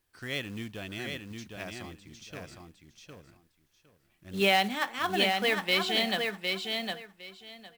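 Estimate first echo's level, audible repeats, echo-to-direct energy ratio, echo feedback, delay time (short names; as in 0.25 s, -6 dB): -4.5 dB, 3, -4.5 dB, 18%, 0.759 s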